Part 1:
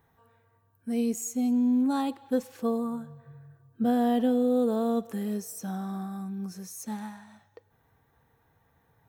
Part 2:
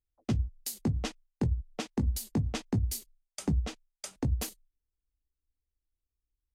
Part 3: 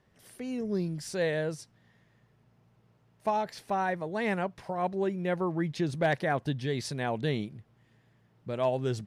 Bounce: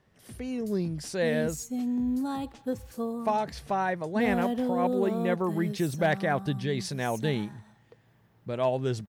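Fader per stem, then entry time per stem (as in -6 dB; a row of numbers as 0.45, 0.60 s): -4.5, -17.5, +1.5 dB; 0.35, 0.00, 0.00 s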